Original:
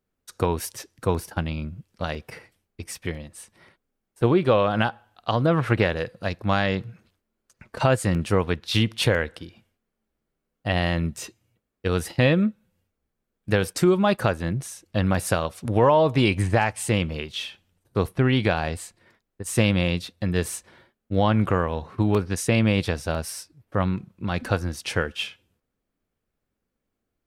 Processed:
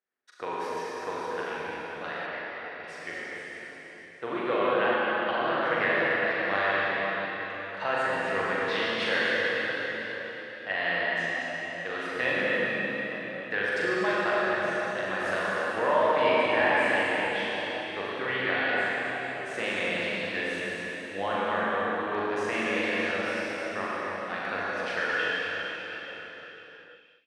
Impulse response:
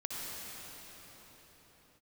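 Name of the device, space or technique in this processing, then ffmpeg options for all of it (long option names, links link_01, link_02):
station announcement: -filter_complex "[0:a]highpass=460,lowpass=4100,equalizer=frequency=1800:width_type=o:width=0.56:gain=10,aecho=1:1:40.82|242:0.708|0.316[link_01];[1:a]atrim=start_sample=2205[link_02];[link_01][link_02]afir=irnorm=-1:irlink=0,asplit=3[link_03][link_04][link_05];[link_03]afade=type=out:start_time=2.26:duration=0.02[link_06];[link_04]lowpass=4400,afade=type=in:start_time=2.26:duration=0.02,afade=type=out:start_time=2.82:duration=0.02[link_07];[link_05]afade=type=in:start_time=2.82:duration=0.02[link_08];[link_06][link_07][link_08]amix=inputs=3:normalize=0,volume=-7dB"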